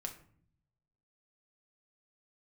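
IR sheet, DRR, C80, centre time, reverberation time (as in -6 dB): 2.5 dB, 15.0 dB, 12 ms, 0.55 s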